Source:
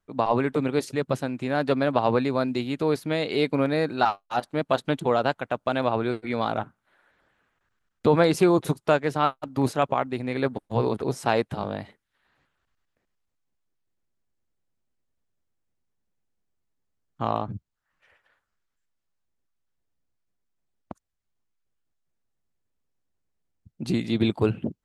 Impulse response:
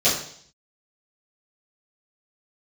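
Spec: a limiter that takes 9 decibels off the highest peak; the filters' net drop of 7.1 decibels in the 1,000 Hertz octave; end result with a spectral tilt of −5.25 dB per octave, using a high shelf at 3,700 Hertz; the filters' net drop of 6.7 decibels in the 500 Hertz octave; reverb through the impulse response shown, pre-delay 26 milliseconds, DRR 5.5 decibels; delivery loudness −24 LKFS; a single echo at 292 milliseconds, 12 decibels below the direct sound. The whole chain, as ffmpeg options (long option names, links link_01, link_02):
-filter_complex "[0:a]equalizer=frequency=500:width_type=o:gain=-6.5,equalizer=frequency=1000:width_type=o:gain=-8,highshelf=frequency=3700:gain=8,alimiter=limit=-18.5dB:level=0:latency=1,aecho=1:1:292:0.251,asplit=2[link_01][link_02];[1:a]atrim=start_sample=2205,adelay=26[link_03];[link_02][link_03]afir=irnorm=-1:irlink=0,volume=-22.5dB[link_04];[link_01][link_04]amix=inputs=2:normalize=0,volume=5dB"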